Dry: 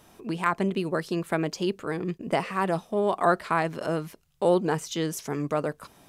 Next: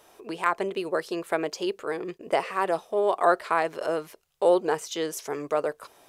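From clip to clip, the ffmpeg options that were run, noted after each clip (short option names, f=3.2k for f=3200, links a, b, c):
-af "lowshelf=f=300:t=q:w=1.5:g=-11.5"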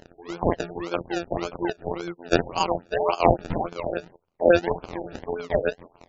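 -af "afftfilt=real='hypot(re,im)*cos(PI*b)':imag='0':win_size=2048:overlap=0.75,acrusher=samples=33:mix=1:aa=0.000001:lfo=1:lforange=19.8:lforate=1.8,afftfilt=real='re*lt(b*sr/1024,900*pow(7700/900,0.5+0.5*sin(2*PI*3.5*pts/sr)))':imag='im*lt(b*sr/1024,900*pow(7700/900,0.5+0.5*sin(2*PI*3.5*pts/sr)))':win_size=1024:overlap=0.75,volume=4.5dB"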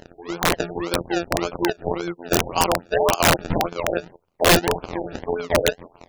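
-af "aeval=exprs='(mod(4.22*val(0)+1,2)-1)/4.22':c=same,volume=5dB"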